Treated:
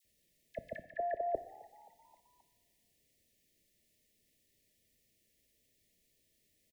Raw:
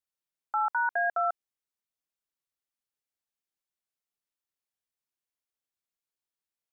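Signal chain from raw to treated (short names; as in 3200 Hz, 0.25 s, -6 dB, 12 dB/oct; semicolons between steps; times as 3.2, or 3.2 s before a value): brick-wall FIR band-stop 680–1700 Hz; dispersion lows, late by 49 ms, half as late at 1200 Hz; reverse; compressor 6:1, threshold -53 dBFS, peak gain reduction 13 dB; reverse; low shelf 430 Hz +11 dB; frequency-shifting echo 0.264 s, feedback 58%, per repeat +72 Hz, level -22.5 dB; two-slope reverb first 0.91 s, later 2.6 s, from -20 dB, DRR 11.5 dB; gain +16 dB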